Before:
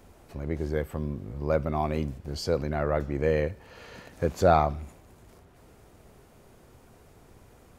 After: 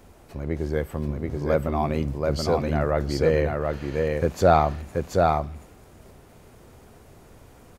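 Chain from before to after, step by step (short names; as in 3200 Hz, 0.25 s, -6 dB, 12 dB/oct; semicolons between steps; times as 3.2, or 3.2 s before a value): echo 0.731 s -3 dB; gain +3 dB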